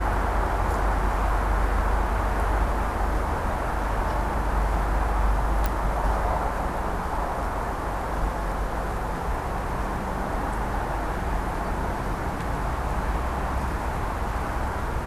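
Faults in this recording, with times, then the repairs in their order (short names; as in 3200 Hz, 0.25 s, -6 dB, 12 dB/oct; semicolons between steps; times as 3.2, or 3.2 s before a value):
5.66 pop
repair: de-click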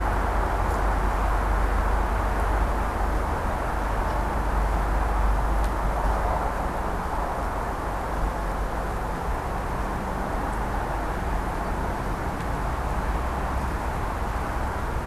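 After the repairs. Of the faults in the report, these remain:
none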